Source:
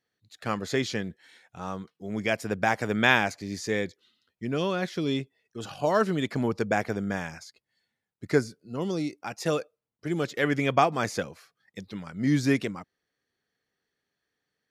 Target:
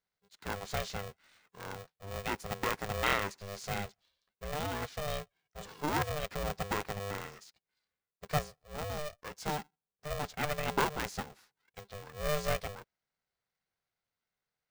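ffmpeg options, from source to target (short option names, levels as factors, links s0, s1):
-af "bandreject=f=2800:w=5,aeval=exprs='val(0)*sgn(sin(2*PI*300*n/s))':c=same,volume=0.376"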